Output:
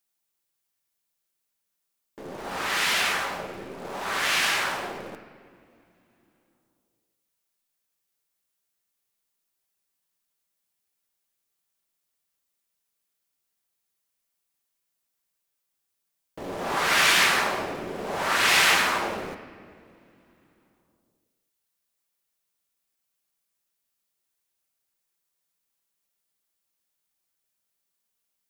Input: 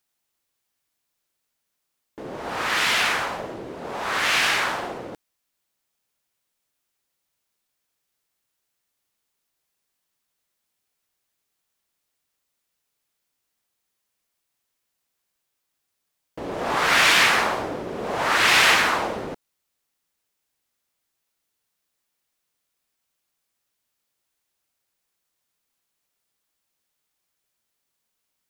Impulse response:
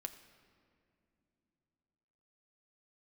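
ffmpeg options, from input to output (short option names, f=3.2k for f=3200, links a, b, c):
-filter_complex "[0:a]highshelf=f=6.8k:g=6.5,asplit=2[a][b];[b]acrusher=bits=6:dc=4:mix=0:aa=0.000001,volume=-11.5dB[c];[a][c]amix=inputs=2:normalize=0[d];[1:a]atrim=start_sample=2205[e];[d][e]afir=irnorm=-1:irlink=0,volume=-2.5dB"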